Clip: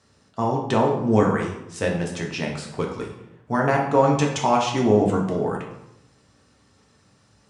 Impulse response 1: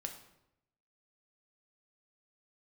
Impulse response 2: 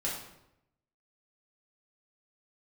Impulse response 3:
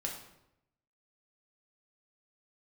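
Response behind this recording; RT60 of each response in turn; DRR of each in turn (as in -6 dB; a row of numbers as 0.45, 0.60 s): 3; 0.85, 0.85, 0.85 s; 4.0, -6.0, -1.0 dB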